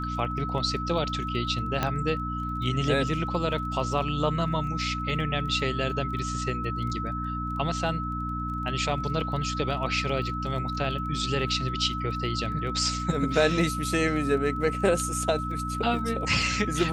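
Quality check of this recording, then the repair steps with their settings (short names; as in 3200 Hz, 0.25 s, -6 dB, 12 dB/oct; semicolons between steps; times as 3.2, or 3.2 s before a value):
crackle 23/s -38 dBFS
hum 60 Hz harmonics 5 -33 dBFS
tone 1300 Hz -32 dBFS
1.83 pop -11 dBFS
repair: de-click; de-hum 60 Hz, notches 5; notch 1300 Hz, Q 30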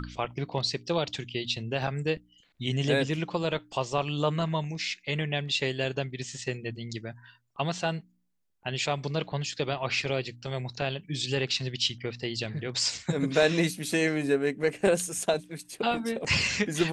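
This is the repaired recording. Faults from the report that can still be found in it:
1.83 pop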